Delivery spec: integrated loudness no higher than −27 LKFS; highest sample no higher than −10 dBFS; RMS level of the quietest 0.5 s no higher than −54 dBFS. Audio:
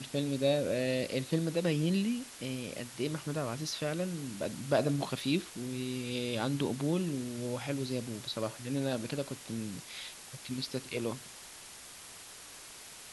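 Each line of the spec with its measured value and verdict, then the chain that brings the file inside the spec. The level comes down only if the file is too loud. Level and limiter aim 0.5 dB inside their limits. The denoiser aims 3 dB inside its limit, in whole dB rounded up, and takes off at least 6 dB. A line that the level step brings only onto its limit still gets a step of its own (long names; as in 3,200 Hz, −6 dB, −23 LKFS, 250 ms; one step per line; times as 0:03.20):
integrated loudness −34.5 LKFS: in spec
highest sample −14.0 dBFS: in spec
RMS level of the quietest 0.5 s −50 dBFS: out of spec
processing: broadband denoise 7 dB, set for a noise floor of −50 dBFS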